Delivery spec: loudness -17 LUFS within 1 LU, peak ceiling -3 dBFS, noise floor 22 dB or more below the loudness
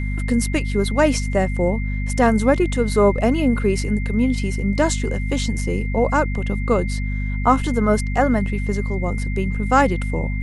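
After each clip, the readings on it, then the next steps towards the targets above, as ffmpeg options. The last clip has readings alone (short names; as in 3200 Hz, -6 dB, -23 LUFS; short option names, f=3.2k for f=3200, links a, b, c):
hum 50 Hz; harmonics up to 250 Hz; hum level -21 dBFS; steady tone 2100 Hz; tone level -33 dBFS; loudness -20.5 LUFS; peak -2.5 dBFS; loudness target -17.0 LUFS
-> -af "bandreject=f=50:t=h:w=6,bandreject=f=100:t=h:w=6,bandreject=f=150:t=h:w=6,bandreject=f=200:t=h:w=6,bandreject=f=250:t=h:w=6"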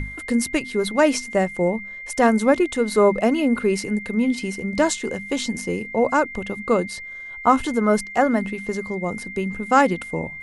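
hum none; steady tone 2100 Hz; tone level -33 dBFS
-> -af "bandreject=f=2.1k:w=30"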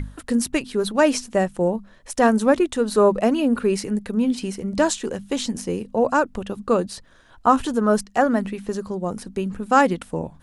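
steady tone none; loudness -22.0 LUFS; peak -3.5 dBFS; loudness target -17.0 LUFS
-> -af "volume=5dB,alimiter=limit=-3dB:level=0:latency=1"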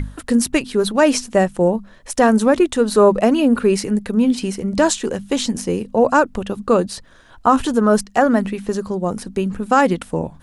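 loudness -17.5 LUFS; peak -3.0 dBFS; noise floor -46 dBFS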